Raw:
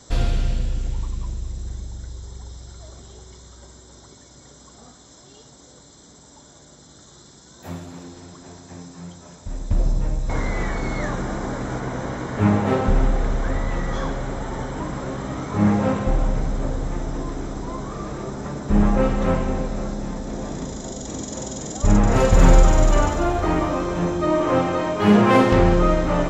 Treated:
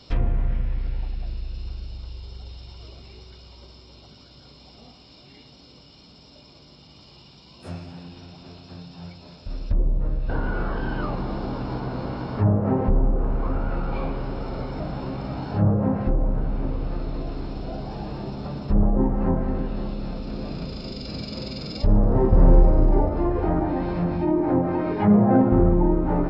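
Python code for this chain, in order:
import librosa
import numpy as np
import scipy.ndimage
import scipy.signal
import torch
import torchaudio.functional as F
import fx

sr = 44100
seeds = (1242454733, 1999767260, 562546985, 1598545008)

y = fx.env_lowpass_down(x, sr, base_hz=1200.0, full_db=-14.0)
y = fx.formant_shift(y, sr, semitones=-6)
y = F.gain(torch.from_numpy(y), -1.5).numpy()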